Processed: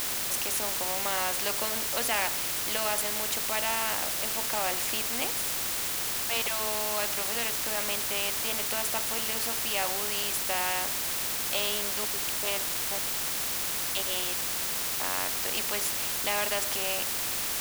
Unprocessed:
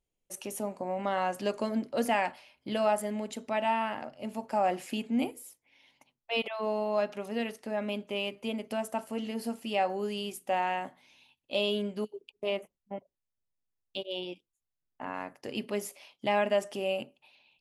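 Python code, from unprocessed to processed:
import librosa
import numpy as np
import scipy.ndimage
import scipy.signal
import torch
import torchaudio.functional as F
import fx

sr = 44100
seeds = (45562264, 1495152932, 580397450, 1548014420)

p1 = scipy.signal.sosfilt(scipy.signal.butter(2, 620.0, 'highpass', fs=sr, output='sos'), x)
p2 = fx.quant_dither(p1, sr, seeds[0], bits=6, dither='triangular')
p3 = p1 + (p2 * librosa.db_to_amplitude(-5.0))
y = fx.spectral_comp(p3, sr, ratio=2.0)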